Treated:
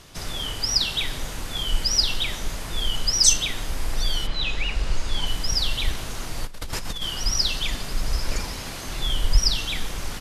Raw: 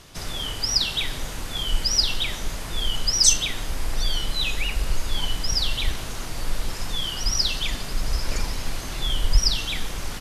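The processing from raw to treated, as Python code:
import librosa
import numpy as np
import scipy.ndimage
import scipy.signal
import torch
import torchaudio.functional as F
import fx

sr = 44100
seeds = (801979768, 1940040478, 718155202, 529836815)

y = fx.lowpass(x, sr, hz=fx.line((4.26, 3700.0), (5.25, 9900.0)), slope=12, at=(4.26, 5.25), fade=0.02)
y = fx.over_compress(y, sr, threshold_db=-30.0, ratio=-1.0, at=(6.44, 7.03))
y = fx.highpass(y, sr, hz=fx.line((8.38, 52.0), (8.85, 120.0)), slope=6, at=(8.38, 8.85), fade=0.02)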